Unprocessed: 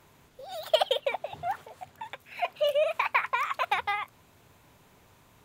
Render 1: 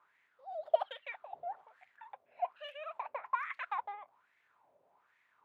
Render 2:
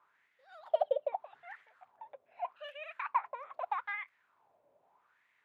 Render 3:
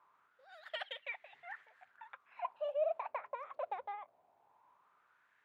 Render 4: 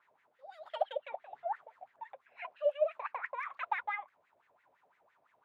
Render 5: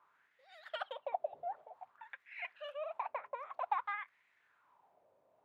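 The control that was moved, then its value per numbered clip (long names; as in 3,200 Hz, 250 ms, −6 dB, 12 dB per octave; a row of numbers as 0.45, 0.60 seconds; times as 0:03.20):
LFO wah, speed: 1.2, 0.8, 0.21, 5.9, 0.53 Hertz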